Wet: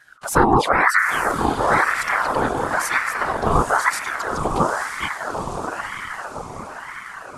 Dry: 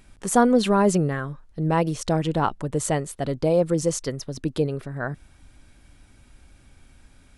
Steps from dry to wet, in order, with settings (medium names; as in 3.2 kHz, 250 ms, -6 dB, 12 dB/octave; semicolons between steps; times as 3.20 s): touch-sensitive flanger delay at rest 6.9 ms, full sweep at -17.5 dBFS; on a send: echo that smears into a reverb 910 ms, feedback 56%, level -5 dB; on the sum: whisper effect; ring modulator with a swept carrier 1.1 kHz, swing 50%, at 1 Hz; trim +6 dB